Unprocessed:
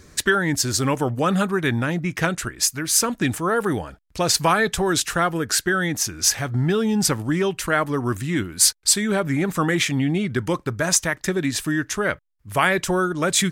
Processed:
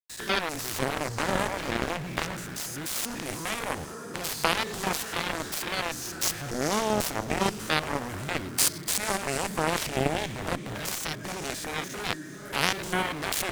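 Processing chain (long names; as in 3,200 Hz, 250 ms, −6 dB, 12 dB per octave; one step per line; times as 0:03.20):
spectrum averaged block by block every 100 ms
in parallel at +3 dB: brickwall limiter −15.5 dBFS, peak gain reduction 8.5 dB
on the sum: centre clipping without the shift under −27 dBFS
feedback delay with all-pass diffusion 467 ms, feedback 49%, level −12 dB
harmonic generator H 3 −9 dB, 7 −30 dB, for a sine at −2.5 dBFS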